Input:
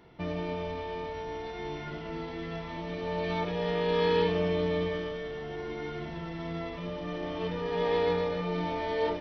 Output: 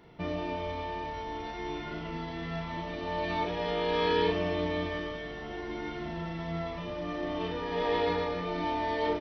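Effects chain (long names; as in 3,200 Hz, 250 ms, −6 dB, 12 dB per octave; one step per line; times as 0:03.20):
double-tracking delay 37 ms −5 dB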